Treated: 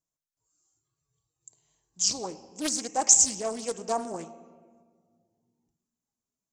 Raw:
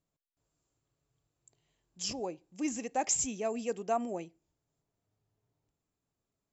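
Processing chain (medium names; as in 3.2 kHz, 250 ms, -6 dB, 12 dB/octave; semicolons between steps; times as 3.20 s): treble shelf 4.5 kHz +7.5 dB; simulated room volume 2400 m³, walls mixed, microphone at 0.56 m; spectral noise reduction 11 dB; fifteen-band graphic EQ 1 kHz +6 dB, 2.5 kHz -4 dB, 6.3 kHz +10 dB; loudspeaker Doppler distortion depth 0.44 ms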